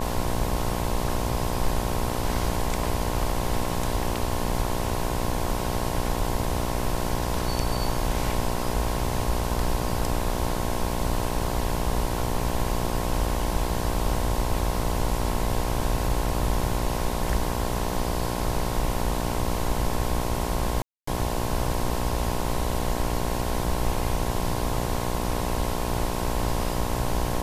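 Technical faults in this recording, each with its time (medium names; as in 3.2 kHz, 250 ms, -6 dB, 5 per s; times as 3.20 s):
buzz 60 Hz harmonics 18 -30 dBFS
20.82–21.07 s: dropout 254 ms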